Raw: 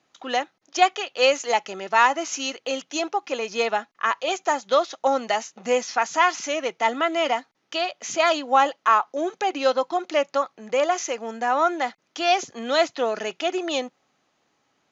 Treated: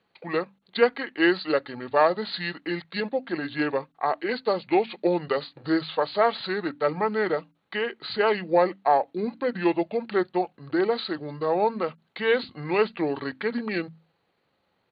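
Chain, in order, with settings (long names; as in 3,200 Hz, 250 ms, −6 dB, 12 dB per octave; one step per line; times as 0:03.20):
mains-hum notches 50/100/150/200/250/300/350/400/450 Hz
pitch shifter −7.5 semitones
level −2 dB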